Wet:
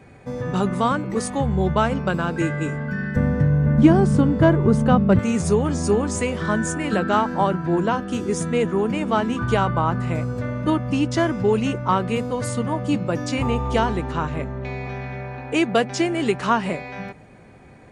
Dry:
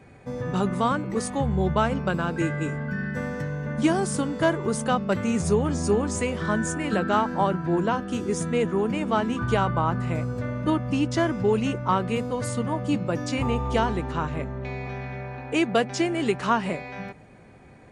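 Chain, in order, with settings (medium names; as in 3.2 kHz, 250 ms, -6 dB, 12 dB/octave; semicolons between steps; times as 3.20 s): 3.16–5.19 s: RIAA curve playback; trim +3 dB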